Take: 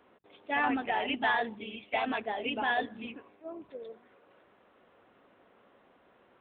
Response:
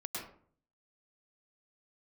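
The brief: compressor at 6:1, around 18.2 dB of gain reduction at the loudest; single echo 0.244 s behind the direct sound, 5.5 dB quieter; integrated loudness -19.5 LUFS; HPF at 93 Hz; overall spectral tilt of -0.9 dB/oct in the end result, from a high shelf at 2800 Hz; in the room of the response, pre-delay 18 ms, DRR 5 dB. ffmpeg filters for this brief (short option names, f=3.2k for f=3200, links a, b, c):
-filter_complex "[0:a]highpass=93,highshelf=f=2.8k:g=5.5,acompressor=threshold=-44dB:ratio=6,aecho=1:1:244:0.531,asplit=2[a][b];[1:a]atrim=start_sample=2205,adelay=18[c];[b][c]afir=irnorm=-1:irlink=0,volume=-6dB[d];[a][d]amix=inputs=2:normalize=0,volume=25dB"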